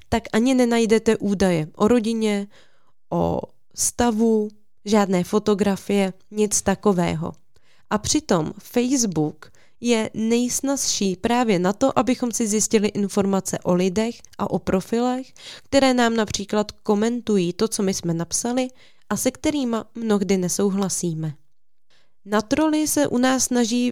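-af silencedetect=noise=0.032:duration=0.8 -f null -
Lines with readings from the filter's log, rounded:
silence_start: 21.32
silence_end: 22.30 | silence_duration: 0.99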